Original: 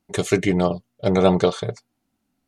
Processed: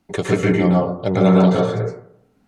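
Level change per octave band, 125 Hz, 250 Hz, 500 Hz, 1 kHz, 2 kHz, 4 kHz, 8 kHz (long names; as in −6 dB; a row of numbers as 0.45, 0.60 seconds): +6.5 dB, +6.0 dB, +2.0 dB, +3.0 dB, +3.0 dB, −2.0 dB, can't be measured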